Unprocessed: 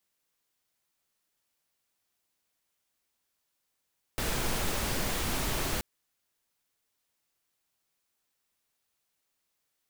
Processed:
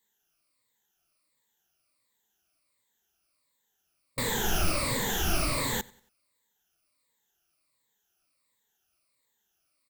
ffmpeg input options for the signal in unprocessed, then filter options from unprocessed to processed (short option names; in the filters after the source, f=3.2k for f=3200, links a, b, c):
-f lavfi -i "anoisesrc=c=pink:a=0.153:d=1.63:r=44100:seed=1"
-af "afftfilt=real='re*pow(10,16/40*sin(2*PI*(1*log(max(b,1)*sr/1024/100)/log(2)-(-1.4)*(pts-256)/sr)))':imag='im*pow(10,16/40*sin(2*PI*(1*log(max(b,1)*sr/1024/100)/log(2)-(-1.4)*(pts-256)/sr)))':win_size=1024:overlap=0.75,aecho=1:1:93|186|279:0.0668|0.0261|0.0102"